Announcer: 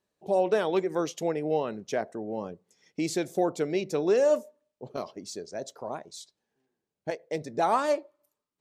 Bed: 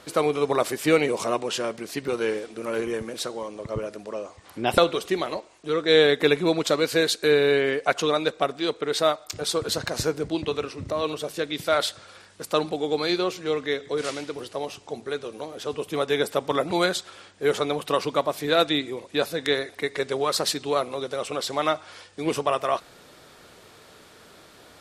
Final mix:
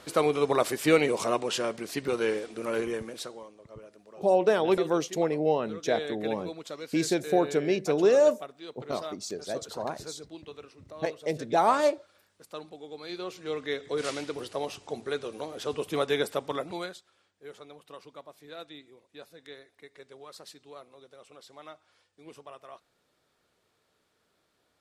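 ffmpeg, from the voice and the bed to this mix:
-filter_complex "[0:a]adelay=3950,volume=2dB[a];[1:a]volume=13.5dB,afade=t=out:st=2.74:d=0.82:silence=0.16788,afade=t=in:st=13.01:d=1.18:silence=0.16788,afade=t=out:st=15.96:d=1.05:silence=0.0891251[b];[a][b]amix=inputs=2:normalize=0"

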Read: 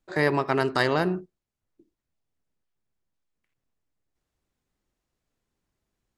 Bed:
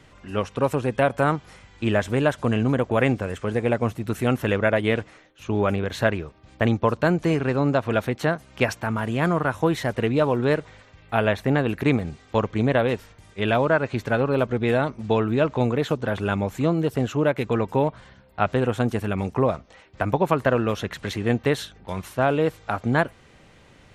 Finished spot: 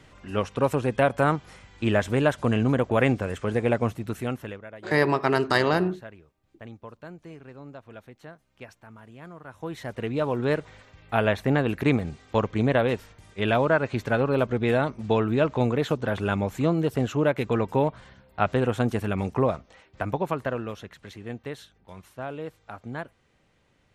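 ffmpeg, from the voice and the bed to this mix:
-filter_complex "[0:a]adelay=4750,volume=1.5dB[a];[1:a]volume=19.5dB,afade=t=out:st=3.79:d=0.83:silence=0.0891251,afade=t=in:st=9.43:d=1.35:silence=0.0944061,afade=t=out:st=19.34:d=1.6:silence=0.237137[b];[a][b]amix=inputs=2:normalize=0"

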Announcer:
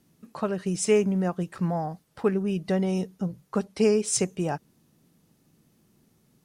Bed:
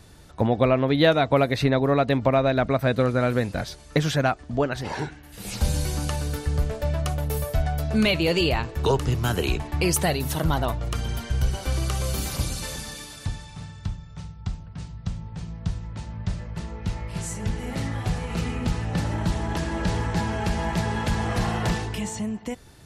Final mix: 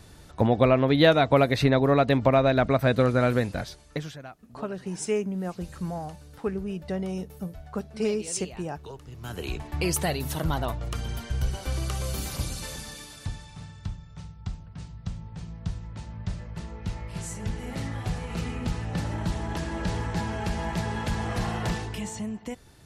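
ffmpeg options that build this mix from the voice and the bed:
-filter_complex "[0:a]adelay=4200,volume=-5.5dB[a];[1:a]volume=16.5dB,afade=t=out:st=3.29:d=0.9:silence=0.0944061,afade=t=in:st=9.11:d=0.7:silence=0.149624[b];[a][b]amix=inputs=2:normalize=0"

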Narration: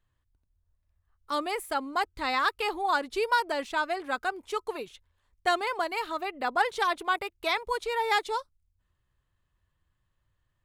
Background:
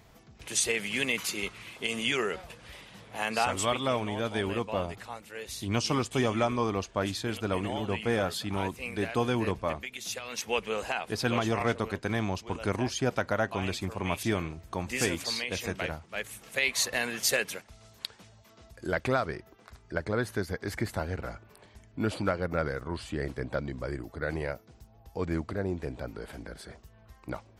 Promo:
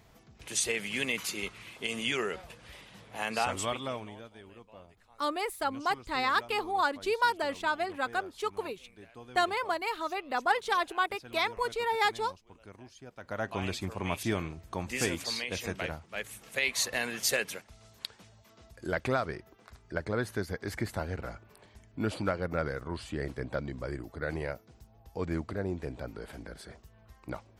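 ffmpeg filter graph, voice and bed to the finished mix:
-filter_complex "[0:a]adelay=3900,volume=-1.5dB[a];[1:a]volume=16.5dB,afade=t=out:st=3.47:d=0.84:silence=0.11885,afade=t=in:st=13.17:d=0.4:silence=0.112202[b];[a][b]amix=inputs=2:normalize=0"

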